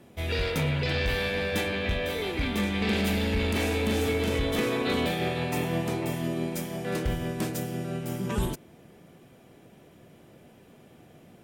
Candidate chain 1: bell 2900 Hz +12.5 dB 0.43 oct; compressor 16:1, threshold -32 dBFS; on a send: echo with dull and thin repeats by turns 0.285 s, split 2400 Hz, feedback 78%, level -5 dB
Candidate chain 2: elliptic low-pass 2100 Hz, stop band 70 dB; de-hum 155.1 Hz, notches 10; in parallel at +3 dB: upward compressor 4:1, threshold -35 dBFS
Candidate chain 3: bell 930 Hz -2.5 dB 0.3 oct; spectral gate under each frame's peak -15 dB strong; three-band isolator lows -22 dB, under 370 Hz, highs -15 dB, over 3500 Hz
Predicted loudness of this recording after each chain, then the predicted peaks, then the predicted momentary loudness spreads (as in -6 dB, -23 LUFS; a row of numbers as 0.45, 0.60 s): -34.0, -22.5, -35.5 LUFS; -20.5, -10.0, -20.5 dBFS; 16, 19, 9 LU